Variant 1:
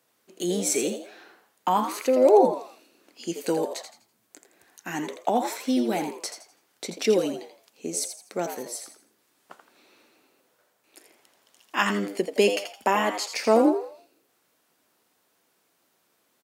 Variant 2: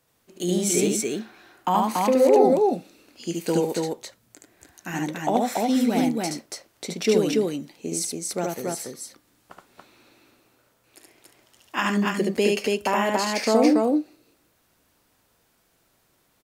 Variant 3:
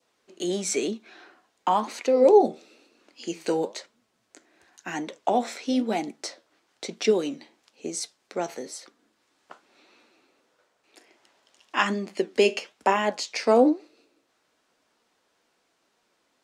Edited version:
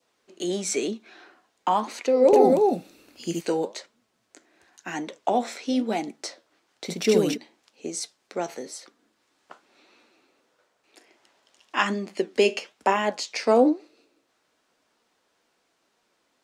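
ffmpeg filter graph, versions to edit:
-filter_complex "[1:a]asplit=2[a][b];[2:a]asplit=3[c][d][e];[c]atrim=end=2.332[f];[a]atrim=start=2.328:end=3.412[g];[d]atrim=start=3.408:end=6.89[h];[b]atrim=start=6.83:end=7.38[i];[e]atrim=start=7.32[j];[f][g]acrossfade=d=0.004:c1=hsin:c2=hsin[k];[k][h]acrossfade=d=0.004:c1=hsin:c2=hsin[l];[l][i]acrossfade=d=0.06:c1=tri:c2=tri[m];[m][j]acrossfade=d=0.06:c1=tri:c2=tri"

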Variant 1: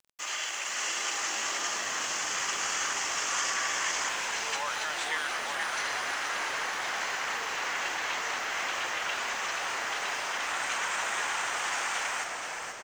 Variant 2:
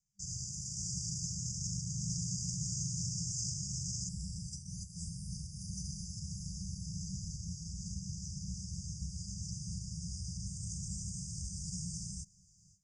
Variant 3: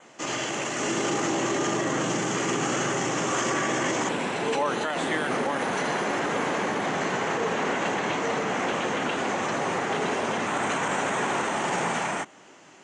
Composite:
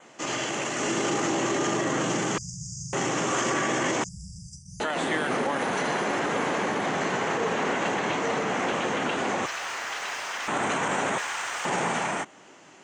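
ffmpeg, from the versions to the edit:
-filter_complex "[1:a]asplit=2[a][b];[0:a]asplit=2[c][d];[2:a]asplit=5[e][f][g][h][i];[e]atrim=end=2.382[j];[a]atrim=start=2.378:end=2.932[k];[f]atrim=start=2.928:end=4.042[l];[b]atrim=start=4.038:end=4.802[m];[g]atrim=start=4.798:end=9.462[n];[c]atrim=start=9.458:end=10.482[o];[h]atrim=start=10.478:end=11.182[p];[d]atrim=start=11.178:end=11.652[q];[i]atrim=start=11.648[r];[j][k]acrossfade=d=0.004:c1=hsin:c2=hsin[s];[s][l]acrossfade=d=0.004:c1=hsin:c2=hsin[t];[t][m]acrossfade=d=0.004:c1=hsin:c2=hsin[u];[u][n]acrossfade=d=0.004:c1=hsin:c2=hsin[v];[v][o]acrossfade=d=0.004:c1=hsin:c2=hsin[w];[w][p]acrossfade=d=0.004:c1=hsin:c2=hsin[x];[x][q]acrossfade=d=0.004:c1=hsin:c2=hsin[y];[y][r]acrossfade=d=0.004:c1=hsin:c2=hsin"

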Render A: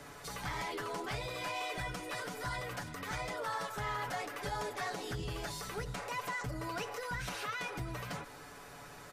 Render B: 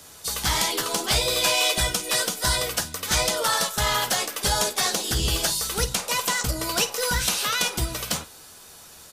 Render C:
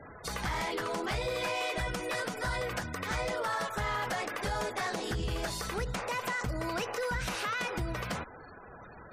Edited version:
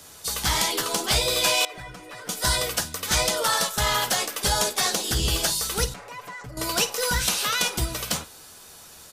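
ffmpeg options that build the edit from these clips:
-filter_complex "[0:a]asplit=2[a][b];[1:a]asplit=3[c][d][e];[c]atrim=end=1.652[f];[a]atrim=start=1.648:end=2.292[g];[d]atrim=start=2.288:end=5.942[h];[b]atrim=start=5.938:end=6.572[i];[e]atrim=start=6.568[j];[f][g]acrossfade=d=0.004:c1=hsin:c2=hsin[k];[k][h]acrossfade=d=0.004:c1=hsin:c2=hsin[l];[l][i]acrossfade=d=0.004:c1=hsin:c2=hsin[m];[m][j]acrossfade=d=0.004:c1=hsin:c2=hsin"

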